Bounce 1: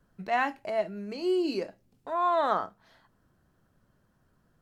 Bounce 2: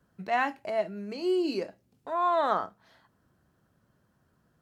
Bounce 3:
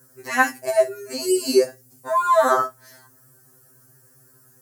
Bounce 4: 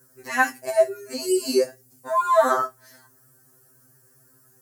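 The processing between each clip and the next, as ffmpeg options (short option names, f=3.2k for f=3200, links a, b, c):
-af "highpass=60"
-af "equalizer=f=100:t=o:w=0.67:g=7,equalizer=f=400:t=o:w=0.67:g=7,equalizer=f=1.6k:t=o:w=0.67:g=6,equalizer=f=6.3k:t=o:w=0.67:g=-3,aexciter=amount=8.9:drive=8.6:freq=5.3k,afftfilt=real='re*2.45*eq(mod(b,6),0)':imag='im*2.45*eq(mod(b,6),0)':win_size=2048:overlap=0.75,volume=8dB"
-af "flanger=delay=2.5:depth=2.8:regen=68:speed=1.1:shape=triangular,volume=1.5dB"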